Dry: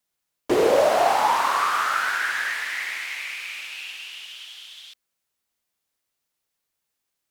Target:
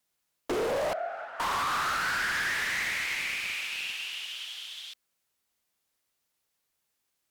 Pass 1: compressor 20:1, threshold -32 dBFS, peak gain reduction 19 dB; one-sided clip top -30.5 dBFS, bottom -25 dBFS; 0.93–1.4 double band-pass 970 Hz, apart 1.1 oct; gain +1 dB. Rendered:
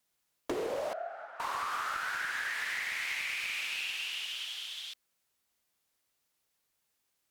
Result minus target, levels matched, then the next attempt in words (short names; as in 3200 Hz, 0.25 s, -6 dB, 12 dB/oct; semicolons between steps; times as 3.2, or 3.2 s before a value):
compressor: peak gain reduction +9.5 dB
compressor 20:1, threshold -22 dBFS, peak gain reduction 9.5 dB; one-sided clip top -30.5 dBFS, bottom -25 dBFS; 0.93–1.4 double band-pass 970 Hz, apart 1.1 oct; gain +1 dB